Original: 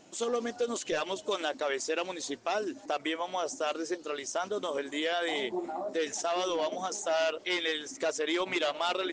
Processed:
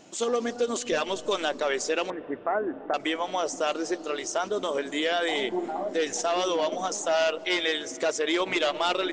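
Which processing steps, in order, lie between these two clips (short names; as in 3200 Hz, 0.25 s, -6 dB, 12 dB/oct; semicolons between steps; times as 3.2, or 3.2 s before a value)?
2.1–2.94 steep low-pass 2000 Hz 72 dB/oct; on a send: tilt -4.5 dB/oct + reverb RT60 4.8 s, pre-delay 0.153 s, DRR 19.5 dB; on the sum: gain +4.5 dB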